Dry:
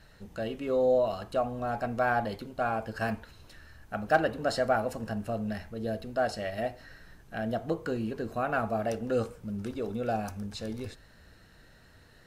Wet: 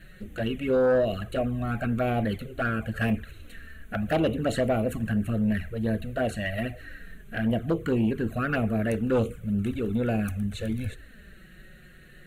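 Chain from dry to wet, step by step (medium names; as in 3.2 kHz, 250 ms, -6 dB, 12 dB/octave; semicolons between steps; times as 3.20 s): static phaser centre 2.2 kHz, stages 4; touch-sensitive flanger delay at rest 6.5 ms, full sweep at -29 dBFS; sine folder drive 4 dB, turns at -21.5 dBFS; trim +3.5 dB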